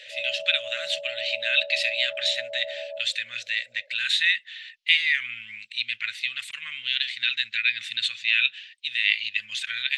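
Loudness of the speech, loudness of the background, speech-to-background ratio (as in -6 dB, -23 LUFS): -24.5 LUFS, -37.0 LUFS, 12.5 dB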